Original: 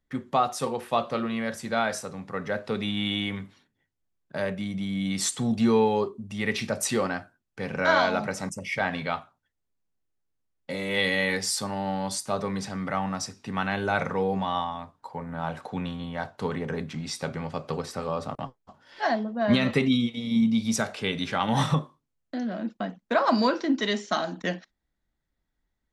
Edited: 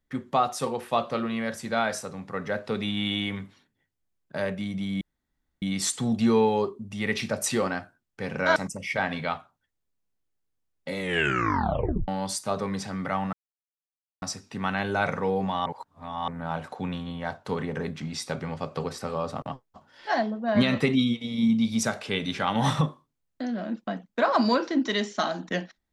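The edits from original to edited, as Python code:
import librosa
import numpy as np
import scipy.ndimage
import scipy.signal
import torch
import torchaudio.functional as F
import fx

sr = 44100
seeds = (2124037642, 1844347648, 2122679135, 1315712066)

y = fx.edit(x, sr, fx.insert_room_tone(at_s=5.01, length_s=0.61),
    fx.cut(start_s=7.95, length_s=0.43),
    fx.tape_stop(start_s=10.82, length_s=1.08),
    fx.insert_silence(at_s=13.15, length_s=0.89),
    fx.reverse_span(start_s=14.59, length_s=0.62), tone=tone)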